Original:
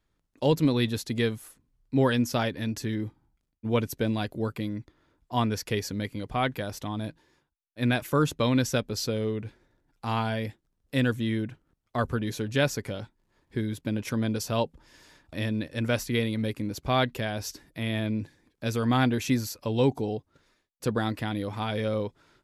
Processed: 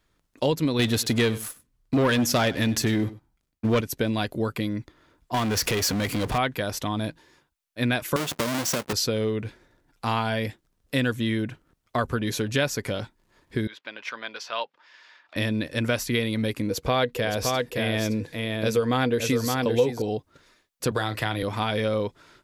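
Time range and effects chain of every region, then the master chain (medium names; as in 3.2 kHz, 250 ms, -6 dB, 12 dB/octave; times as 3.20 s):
0.79–3.81 s: waveshaping leveller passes 2 + delay 97 ms -20 dB
5.34–6.38 s: high-pass 45 Hz + compression 2.5:1, threshold -32 dBFS + power-law waveshaper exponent 0.5
8.16–8.93 s: square wave that keeps the level + high-pass 170 Hz + compression 4:1, threshold -26 dBFS
13.67–15.36 s: high-pass 1.1 kHz + distance through air 230 m + upward compressor, threshold -59 dBFS
16.68–20.02 s: peaking EQ 480 Hz +13.5 dB 0.2 oct + delay 567 ms -6 dB
20.91–21.43 s: peaking EQ 240 Hz -13.5 dB 0.67 oct + doubling 37 ms -12.5 dB + three bands compressed up and down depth 70%
whole clip: bass shelf 410 Hz -5 dB; band-stop 830 Hz, Q 18; compression 2.5:1, threshold -32 dBFS; trim +9 dB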